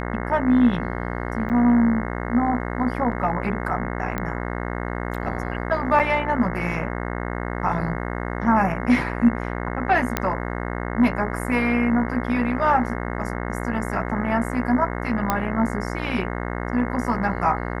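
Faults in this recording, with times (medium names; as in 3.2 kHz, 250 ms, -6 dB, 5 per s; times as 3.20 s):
buzz 60 Hz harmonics 36 -28 dBFS
1.49–1.50 s: dropout 8 ms
4.18 s: pop -13 dBFS
5.99–6.00 s: dropout 6.9 ms
10.17 s: pop -6 dBFS
15.30 s: pop -6 dBFS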